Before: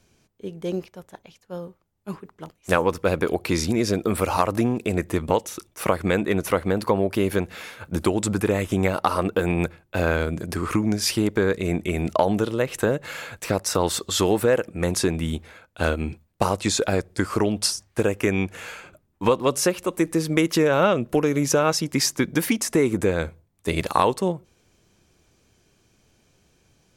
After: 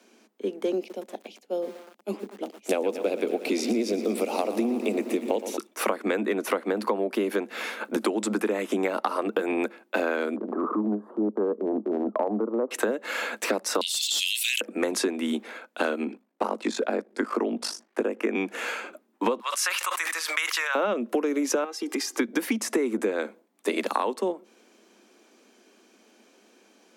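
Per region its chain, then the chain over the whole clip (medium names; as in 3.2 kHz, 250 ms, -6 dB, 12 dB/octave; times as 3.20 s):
0.78–5.57 s: high-order bell 1.3 kHz -12.5 dB 1.2 oct + bit-crushed delay 117 ms, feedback 80%, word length 7-bit, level -13 dB
10.36–12.71 s: elliptic low-pass 1.2 kHz, stop band 50 dB + transient shaper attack -10 dB, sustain -5 dB
13.81–14.61 s: steep high-pass 2.6 kHz 48 dB/octave + overload inside the chain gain 18.5 dB + level flattener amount 100%
16.04–18.35 s: de-esser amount 30% + treble shelf 3.1 kHz -10 dB + ring modulator 25 Hz
19.40–20.75 s: high-pass 1.1 kHz 24 dB/octave + decay stretcher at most 30 dB/s
21.64–22.18 s: comb 2.5 ms, depth 73% + compression 10:1, threshold -29 dBFS
whole clip: steep high-pass 210 Hz 96 dB/octave; treble shelf 3.7 kHz -7 dB; compression 5:1, threshold -31 dBFS; trim +7.5 dB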